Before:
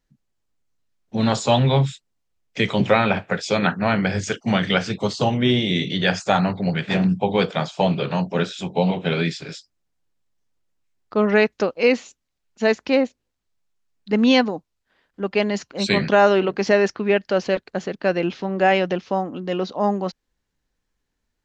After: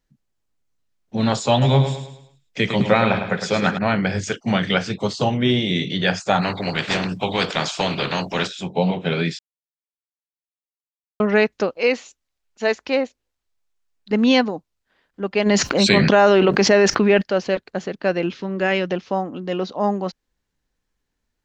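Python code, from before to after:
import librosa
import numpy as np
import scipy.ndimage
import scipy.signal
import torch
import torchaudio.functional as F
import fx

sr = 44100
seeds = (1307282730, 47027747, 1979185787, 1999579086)

y = fx.echo_feedback(x, sr, ms=106, feedback_pct=41, wet_db=-8.0, at=(1.61, 3.77), fade=0.02)
y = fx.spectral_comp(y, sr, ratio=2.0, at=(6.41, 8.46), fade=0.02)
y = fx.peak_eq(y, sr, hz=170.0, db=-9.0, octaves=1.5, at=(11.77, 14.11))
y = fx.env_flatten(y, sr, amount_pct=70, at=(15.45, 17.21), fade=0.02)
y = fx.peak_eq(y, sr, hz=730.0, db=-10.0, octaves=0.53, at=(18.26, 18.9))
y = fx.edit(y, sr, fx.silence(start_s=9.39, length_s=1.81), tone=tone)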